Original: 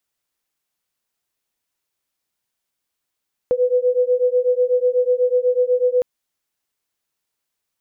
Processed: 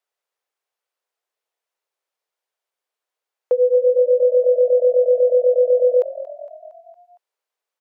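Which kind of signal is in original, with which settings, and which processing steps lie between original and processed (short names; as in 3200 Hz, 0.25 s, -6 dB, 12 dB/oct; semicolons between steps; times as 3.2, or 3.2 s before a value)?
beating tones 494 Hz, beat 8.1 Hz, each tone -17.5 dBFS 2.51 s
steep high-pass 430 Hz 36 dB/oct; tilt -3 dB/oct; frequency-shifting echo 0.23 s, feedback 57%, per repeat +42 Hz, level -16 dB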